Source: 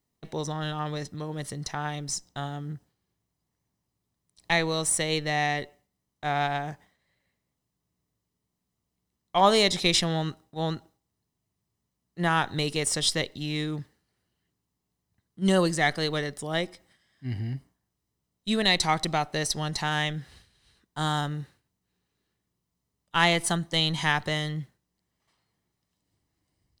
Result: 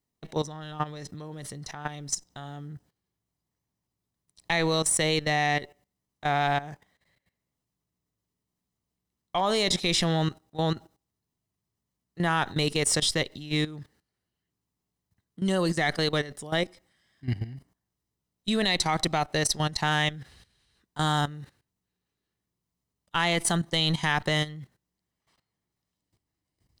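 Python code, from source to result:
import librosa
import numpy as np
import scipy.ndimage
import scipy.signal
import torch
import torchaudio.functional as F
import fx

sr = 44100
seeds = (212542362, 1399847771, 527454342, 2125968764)

y = fx.level_steps(x, sr, step_db=15)
y = F.gain(torch.from_numpy(y), 5.5).numpy()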